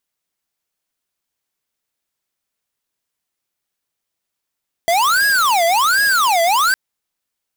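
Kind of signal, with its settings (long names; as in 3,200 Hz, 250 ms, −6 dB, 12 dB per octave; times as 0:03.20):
siren wail 667–1,660 Hz 1.3 per second square −14.5 dBFS 1.86 s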